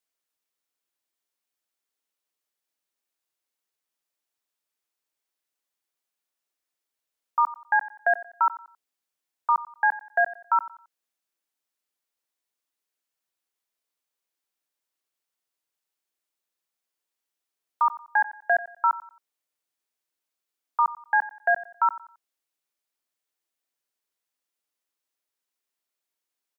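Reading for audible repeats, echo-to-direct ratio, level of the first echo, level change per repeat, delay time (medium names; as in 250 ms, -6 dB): 2, -16.5 dB, -17.0 dB, -10.0 dB, 90 ms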